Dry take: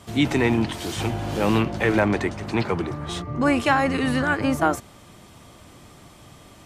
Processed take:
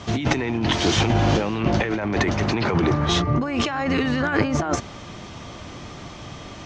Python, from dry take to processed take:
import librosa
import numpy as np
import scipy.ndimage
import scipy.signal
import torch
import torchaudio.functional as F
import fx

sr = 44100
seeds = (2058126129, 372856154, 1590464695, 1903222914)

y = scipy.signal.sosfilt(scipy.signal.ellip(4, 1.0, 70, 6400.0, 'lowpass', fs=sr, output='sos'), x)
y = fx.over_compress(y, sr, threshold_db=-28.0, ratio=-1.0)
y = F.gain(torch.from_numpy(y), 6.5).numpy()